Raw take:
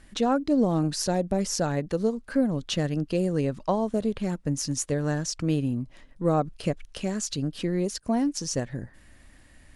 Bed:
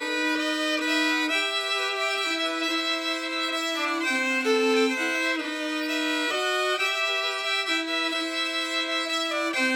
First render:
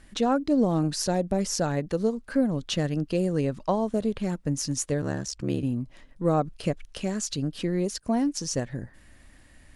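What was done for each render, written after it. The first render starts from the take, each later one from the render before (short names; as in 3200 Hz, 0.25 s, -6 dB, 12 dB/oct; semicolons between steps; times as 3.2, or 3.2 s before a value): 5.01–5.63 ring modulator 35 Hz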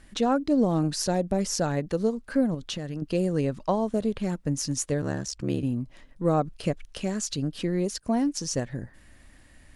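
2.54–3.02 compressor 12:1, threshold -28 dBFS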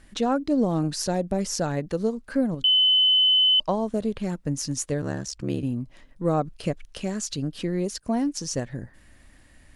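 2.64–3.6 bleep 3030 Hz -15.5 dBFS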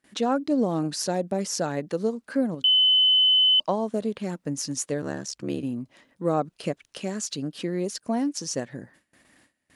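gate with hold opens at -42 dBFS; HPF 190 Hz 12 dB/oct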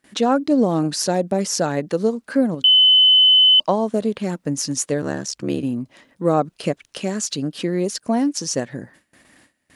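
gain +6.5 dB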